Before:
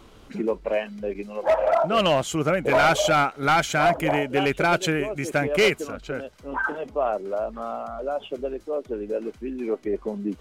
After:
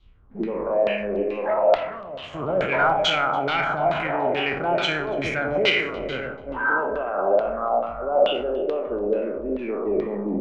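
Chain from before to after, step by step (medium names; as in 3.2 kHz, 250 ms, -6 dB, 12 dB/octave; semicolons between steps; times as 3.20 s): spectral sustain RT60 1.08 s; in parallel at +1 dB: compressor with a negative ratio -25 dBFS; on the sum: spring tank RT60 1.3 s, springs 53/58 ms, chirp 60 ms, DRR 8 dB; peak limiter -10.5 dBFS, peak gain reduction 7.5 dB; 1.75–2.33 s: valve stage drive 23 dB, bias 0.7; LFO low-pass saw down 2.3 Hz 550–3900 Hz; on a send: echo whose repeats swap between lows and highs 145 ms, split 1 kHz, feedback 53%, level -13 dB; on the sum: three bands expanded up and down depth 100%; trim -7 dB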